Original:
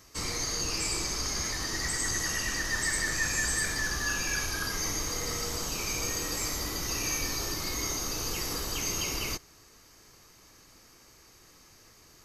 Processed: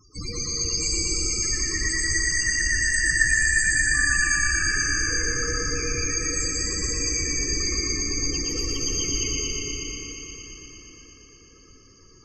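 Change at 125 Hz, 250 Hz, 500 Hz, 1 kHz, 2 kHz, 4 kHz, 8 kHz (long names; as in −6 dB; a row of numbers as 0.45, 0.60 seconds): +6.5, +6.0, +4.5, −2.0, +10.5, +6.0, +7.5 decibels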